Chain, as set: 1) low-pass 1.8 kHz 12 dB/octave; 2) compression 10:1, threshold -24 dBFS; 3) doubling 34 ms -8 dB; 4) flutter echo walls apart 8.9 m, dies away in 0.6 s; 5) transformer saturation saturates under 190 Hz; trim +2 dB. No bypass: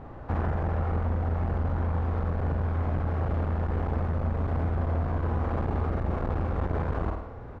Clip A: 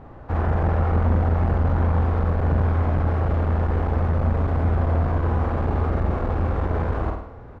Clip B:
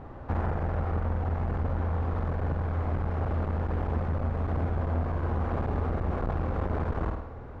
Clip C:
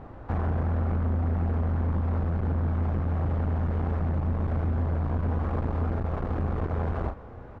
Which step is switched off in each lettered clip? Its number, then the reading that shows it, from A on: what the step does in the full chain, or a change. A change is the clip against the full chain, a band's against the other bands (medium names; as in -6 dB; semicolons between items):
2, mean gain reduction 5.5 dB; 3, loudness change -1.5 LU; 4, momentary loudness spread change +2 LU